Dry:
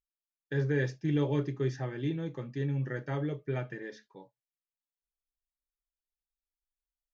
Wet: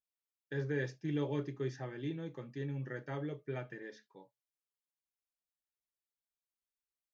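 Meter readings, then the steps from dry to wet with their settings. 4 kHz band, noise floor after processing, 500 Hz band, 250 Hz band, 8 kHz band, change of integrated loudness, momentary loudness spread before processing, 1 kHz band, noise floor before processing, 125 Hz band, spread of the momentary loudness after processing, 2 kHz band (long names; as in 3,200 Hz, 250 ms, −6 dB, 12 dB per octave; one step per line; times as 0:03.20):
−5.0 dB, below −85 dBFS, −5.5 dB, −6.5 dB, can't be measured, −6.5 dB, 10 LU, −5.0 dB, below −85 dBFS, −8.5 dB, 9 LU, −5.0 dB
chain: high-pass filter 150 Hz 6 dB per octave
level −5 dB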